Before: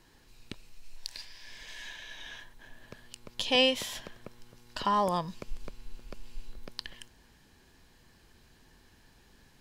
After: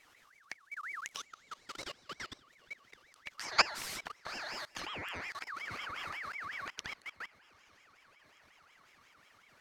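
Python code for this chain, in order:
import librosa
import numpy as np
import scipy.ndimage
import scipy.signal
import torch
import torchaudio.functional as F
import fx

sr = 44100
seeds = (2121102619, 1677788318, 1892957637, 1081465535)

y = fx.echo_diffused(x, sr, ms=908, feedback_pct=61, wet_db=-14.5)
y = fx.level_steps(y, sr, step_db=22)
y = fx.ring_lfo(y, sr, carrier_hz=1700.0, swing_pct=35, hz=5.5)
y = y * librosa.db_to_amplitude(5.0)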